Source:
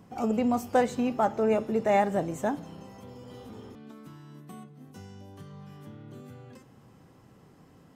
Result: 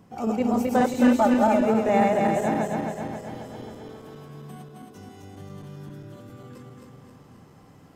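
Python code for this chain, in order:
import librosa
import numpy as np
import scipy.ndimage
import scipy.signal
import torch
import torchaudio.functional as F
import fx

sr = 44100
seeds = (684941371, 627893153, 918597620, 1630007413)

y = fx.reverse_delay_fb(x, sr, ms=134, feedback_pct=76, wet_db=-1)
y = fx.comb(y, sr, ms=3.4, depth=0.9, at=(1.0, 1.65))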